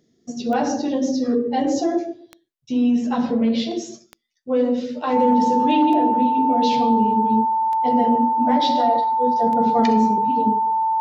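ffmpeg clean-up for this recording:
-af "adeclick=t=4,bandreject=f=890:w=30"

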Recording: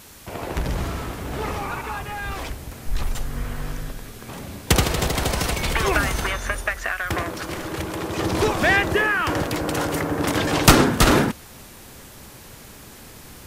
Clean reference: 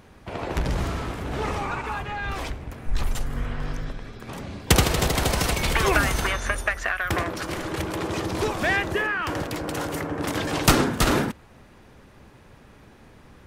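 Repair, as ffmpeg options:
-af "afwtdn=0.0056,asetnsamples=n=441:p=0,asendcmd='8.19 volume volume -5dB',volume=1"

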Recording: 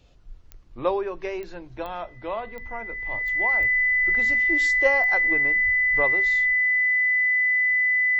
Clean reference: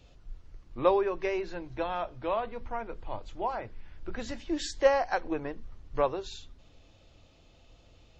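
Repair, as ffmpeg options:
-filter_complex "[0:a]adeclick=t=4,bandreject=f=2000:w=30,asplit=3[s0][s1][s2];[s0]afade=t=out:st=3.59:d=0.02[s3];[s1]highpass=f=140:w=0.5412,highpass=f=140:w=1.3066,afade=t=in:st=3.59:d=0.02,afade=t=out:st=3.71:d=0.02[s4];[s2]afade=t=in:st=3.71:d=0.02[s5];[s3][s4][s5]amix=inputs=3:normalize=0,asplit=3[s6][s7][s8];[s6]afade=t=out:st=5.65:d=0.02[s9];[s7]highpass=f=140:w=0.5412,highpass=f=140:w=1.3066,afade=t=in:st=5.65:d=0.02,afade=t=out:st=5.77:d=0.02[s10];[s8]afade=t=in:st=5.77:d=0.02[s11];[s9][s10][s11]amix=inputs=3:normalize=0"

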